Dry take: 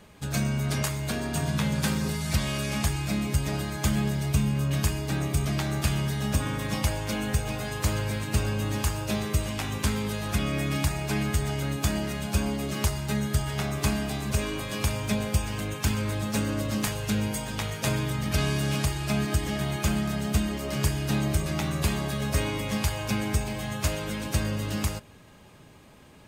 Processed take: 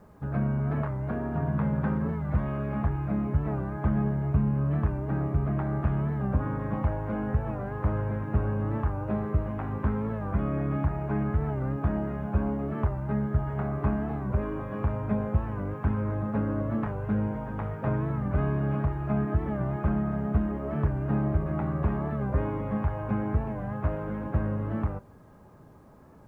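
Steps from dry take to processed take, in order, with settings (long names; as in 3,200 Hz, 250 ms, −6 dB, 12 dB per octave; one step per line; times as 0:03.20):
low-pass filter 1,400 Hz 24 dB per octave
bit-depth reduction 12 bits, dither none
wow of a warped record 45 rpm, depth 100 cents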